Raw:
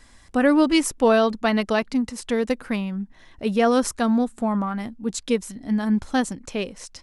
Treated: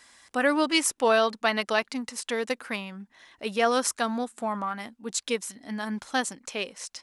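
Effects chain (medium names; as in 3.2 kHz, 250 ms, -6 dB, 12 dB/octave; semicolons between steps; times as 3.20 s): high-pass 980 Hz 6 dB/octave; trim +1.5 dB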